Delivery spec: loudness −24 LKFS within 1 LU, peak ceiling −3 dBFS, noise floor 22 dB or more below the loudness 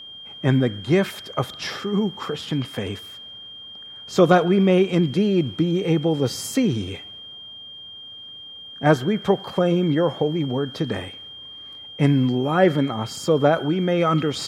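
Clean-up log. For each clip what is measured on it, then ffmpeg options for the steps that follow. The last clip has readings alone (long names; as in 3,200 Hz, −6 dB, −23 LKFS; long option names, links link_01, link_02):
interfering tone 3,200 Hz; level of the tone −37 dBFS; integrated loudness −21.5 LKFS; sample peak −2.5 dBFS; target loudness −24.0 LKFS
→ -af "bandreject=frequency=3200:width=30"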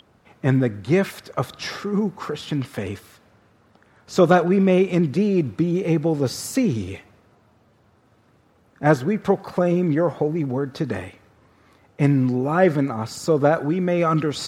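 interfering tone none found; integrated loudness −21.5 LKFS; sample peak −2.5 dBFS; target loudness −24.0 LKFS
→ -af "volume=-2.5dB"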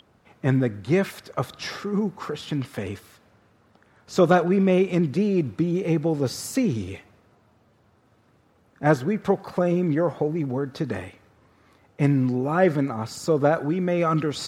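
integrated loudness −24.0 LKFS; sample peak −5.0 dBFS; background noise floor −61 dBFS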